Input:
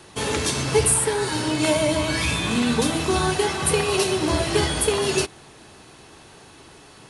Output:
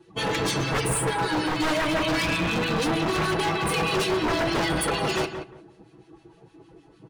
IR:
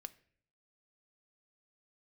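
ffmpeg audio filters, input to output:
-filter_complex "[0:a]lowpass=f=3.1k:p=1,afftdn=nr=18:nf=-39,equalizer=f=150:w=3.6:g=-5,aecho=1:1:6.1:0.85,asplit=2[a][b];[b]alimiter=limit=-18.5dB:level=0:latency=1:release=159,volume=-3dB[c];[a][c]amix=inputs=2:normalize=0,acrossover=split=1500[d][e];[d]aeval=exprs='val(0)*(1-0.7/2+0.7/2*cos(2*PI*6.5*n/s))':c=same[f];[e]aeval=exprs='val(0)*(1-0.7/2-0.7/2*cos(2*PI*6.5*n/s))':c=same[g];[f][g]amix=inputs=2:normalize=0,aeval=exprs='0.106*(abs(mod(val(0)/0.106+3,4)-2)-1)':c=same,asplit=2[h][i];[i]adelay=176,lowpass=f=1.6k:p=1,volume=-7dB,asplit=2[j][k];[k]adelay=176,lowpass=f=1.6k:p=1,volume=0.23,asplit=2[l][m];[m]adelay=176,lowpass=f=1.6k:p=1,volume=0.23[n];[j][l][n]amix=inputs=3:normalize=0[o];[h][o]amix=inputs=2:normalize=0"

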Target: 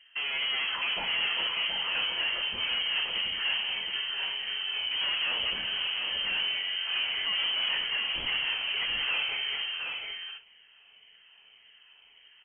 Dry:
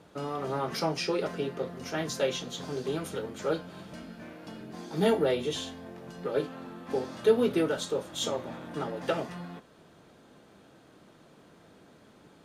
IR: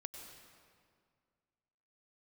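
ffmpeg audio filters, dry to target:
-filter_complex "[0:a]afftfilt=real='re*pow(10,11/40*sin(2*PI*(0.6*log(max(b,1)*sr/1024/100)/log(2)-(1.8)*(pts-256)/sr)))':imag='im*pow(10,11/40*sin(2*PI*(0.6*log(max(b,1)*sr/1024/100)/log(2)-(1.8)*(pts-256)/sr)))':win_size=1024:overlap=0.75,agate=range=-14dB:threshold=-46dB:ratio=16:detection=peak,acontrast=26,asoftclip=type=tanh:threshold=-34dB,asplit=2[a][b];[b]aecho=0:1:88|180|208|720|781:0.2|0.237|0.251|0.501|0.355[c];[a][c]amix=inputs=2:normalize=0,lowpass=f=2.8k:t=q:w=0.5098,lowpass=f=2.8k:t=q:w=0.6013,lowpass=f=2.8k:t=q:w=0.9,lowpass=f=2.8k:t=q:w=2.563,afreqshift=-3300,volume=4.5dB"

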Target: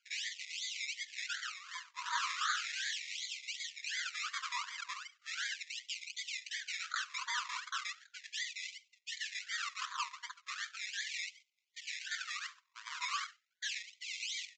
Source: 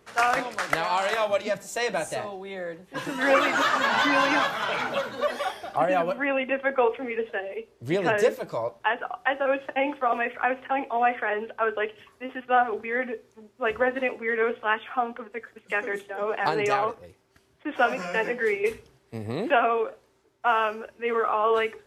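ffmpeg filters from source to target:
-filter_complex "[0:a]flanger=delay=6.9:depth=9.7:regen=-60:speed=1.4:shape=sinusoidal,highpass=f=610:p=1,acrusher=samples=23:mix=1:aa=0.000001:lfo=1:lforange=13.8:lforate=1.8,asoftclip=type=hard:threshold=-32dB,asplit=2[a][b];[b]asplit=3[c][d][e];[c]adelay=100,afreqshift=-54,volume=-21dB[f];[d]adelay=200,afreqshift=-108,volume=-29.6dB[g];[e]adelay=300,afreqshift=-162,volume=-38.3dB[h];[f][g][h]amix=inputs=3:normalize=0[i];[a][i]amix=inputs=2:normalize=0,agate=range=-7dB:threshold=-56dB:ratio=16:detection=peak,atempo=1.5,aresample=16000,aresample=44100,afftfilt=real='re*gte(b*sr/1024,920*pow(2000/920,0.5+0.5*sin(2*PI*0.37*pts/sr)))':imag='im*gte(b*sr/1024,920*pow(2000/920,0.5+0.5*sin(2*PI*0.37*pts/sr)))':win_size=1024:overlap=0.75,volume=4.5dB"

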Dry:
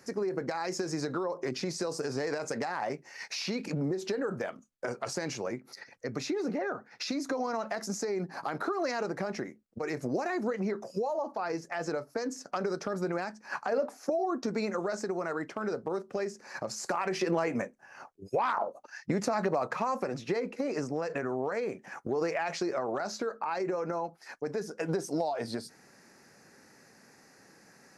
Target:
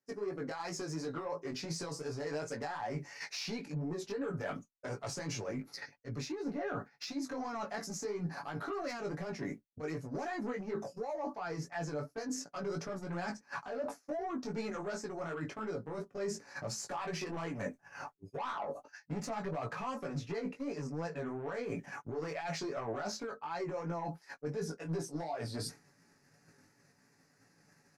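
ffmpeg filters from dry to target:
-af "asubboost=boost=2:cutoff=240,asoftclip=type=tanh:threshold=-26.5dB,aecho=1:1:7:0.45,areverse,acompressor=threshold=-42dB:ratio=10,areverse,flanger=delay=17.5:depth=2.7:speed=2.8,agate=range=-33dB:threshold=-48dB:ratio=3:detection=peak,volume=9dB"

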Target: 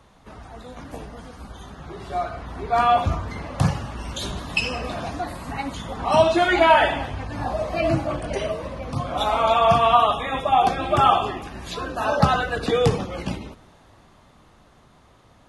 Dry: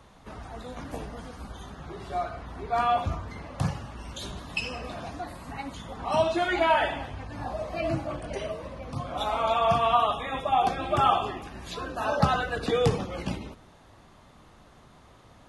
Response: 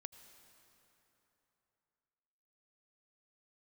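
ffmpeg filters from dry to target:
-af "dynaudnorm=f=370:g=13:m=8.5dB"

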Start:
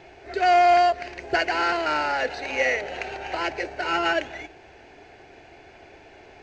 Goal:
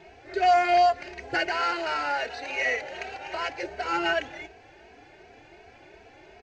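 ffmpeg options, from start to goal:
-filter_complex "[0:a]asettb=1/sr,asplit=3[a][b][c];[a]atrim=end=1.494[d];[b]atrim=start=1.49:end=3.63,asetpts=PTS-STARTPTS,afade=t=in:d=0.004:c=qsin,afade=t=out:st=2.136:d=0.004:c=qsin,lowshelf=f=390:g=-5.5[e];[c]atrim=start=3.626[f];[d][e]acrossfade=d=0.004:c1=hsin:c2=qsin[g];[g][f]acrossfade=d=0.004:c1=qsin:c2=hsin,asplit=2[h][i];[i]adelay=2.8,afreqshift=2.7[j];[h][j]amix=inputs=2:normalize=1"

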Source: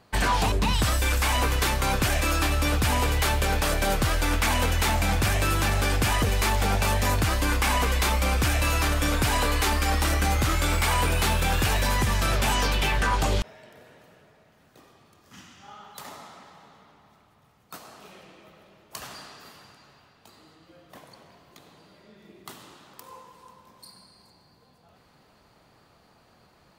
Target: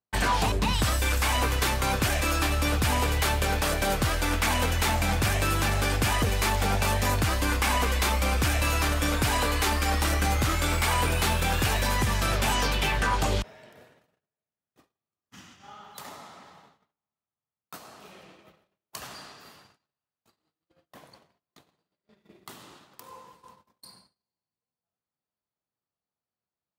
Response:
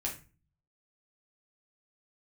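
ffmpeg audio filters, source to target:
-filter_complex "[0:a]asettb=1/sr,asplit=3[a][b][c];[a]atrim=end=19.324[d];[b]atrim=start=19.32:end=22.52,asetpts=PTS-STARTPTS,afade=t=in:d=0.004:c=qsin,afade=t=out:st=3.196:d=0.004:c=qsin,aeval=exprs='if(lt(val(0),0),0.708*val(0),val(0))':c=same[e];[c]atrim=start=22.516[f];[d][e]acrossfade=d=0.004:c1=hsin:c2=qsin[g];[g][f]acrossfade=d=0.004:c1=qsin:c2=hsin,agate=range=-36dB:threshold=-51dB:ratio=16:detection=peak,highpass=44,volume=-1dB"

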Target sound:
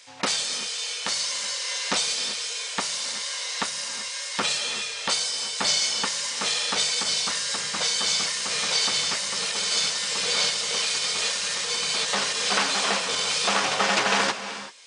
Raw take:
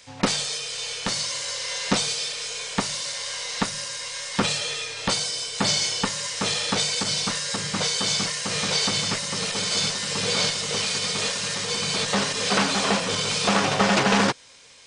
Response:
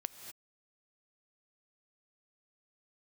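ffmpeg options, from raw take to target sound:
-filter_complex "[0:a]highpass=f=800:p=1,asplit=2[a][b];[1:a]atrim=start_sample=2205,asetrate=28665,aresample=44100[c];[b][c]afir=irnorm=-1:irlink=0,volume=2dB[d];[a][d]amix=inputs=2:normalize=0,volume=-6.5dB"

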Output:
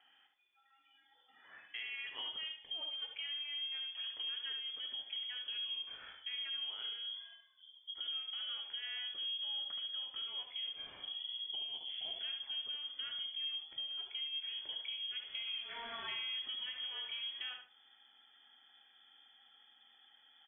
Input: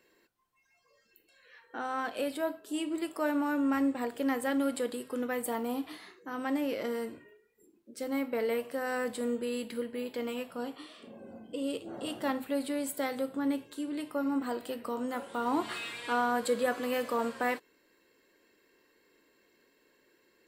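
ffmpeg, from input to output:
-filter_complex "[0:a]asubboost=boost=11:cutoff=160,asoftclip=type=tanh:threshold=-23.5dB,lowpass=f=3k:t=q:w=0.5098,lowpass=f=3k:t=q:w=0.6013,lowpass=f=3k:t=q:w=0.9,lowpass=f=3k:t=q:w=2.563,afreqshift=-3500,acompressor=threshold=-41dB:ratio=6,asplit=2[a][b];[b]adelay=73,lowpass=f=2k:p=1,volume=-4.5dB,asplit=2[c][d];[d]adelay=73,lowpass=f=2k:p=1,volume=0.3,asplit=2[e][f];[f]adelay=73,lowpass=f=2k:p=1,volume=0.3,asplit=2[g][h];[h]adelay=73,lowpass=f=2k:p=1,volume=0.3[i];[a][c][e][g][i]amix=inputs=5:normalize=0"

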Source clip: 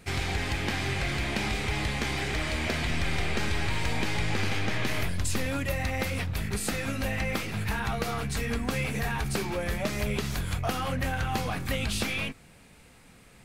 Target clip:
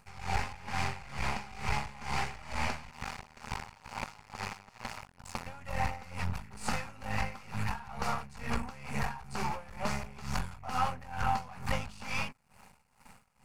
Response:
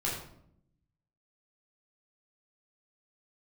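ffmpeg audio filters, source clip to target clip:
-filter_complex "[0:a]aeval=exprs='max(val(0),0)':c=same,acrossover=split=9200[a][b];[b]acompressor=threshold=-60dB:ratio=4:attack=1:release=60[c];[a][c]amix=inputs=2:normalize=0,asplit=2[d][e];[e]asoftclip=type=tanh:threshold=-30.5dB,volume=-9.5dB[f];[d][f]amix=inputs=2:normalize=0,superequalizer=6b=0.282:7b=0.631:9b=2.82:10b=1.78:13b=0.501,aeval=exprs='val(0)*pow(10,-19*(0.5-0.5*cos(2*PI*2.2*n/s))/20)':c=same"

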